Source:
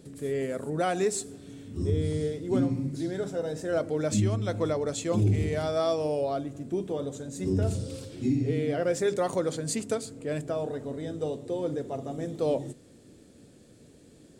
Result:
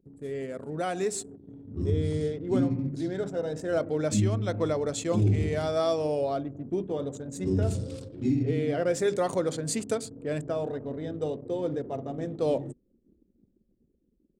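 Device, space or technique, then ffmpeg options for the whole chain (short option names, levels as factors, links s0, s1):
voice memo with heavy noise removal: -af "anlmdn=0.158,dynaudnorm=f=490:g=5:m=1.78,volume=0.596"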